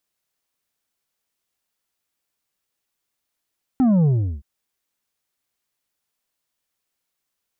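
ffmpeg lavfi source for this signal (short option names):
-f lavfi -i "aevalsrc='0.2*clip((0.62-t)/0.37,0,1)*tanh(2*sin(2*PI*270*0.62/log(65/270)*(exp(log(65/270)*t/0.62)-1)))/tanh(2)':d=0.62:s=44100"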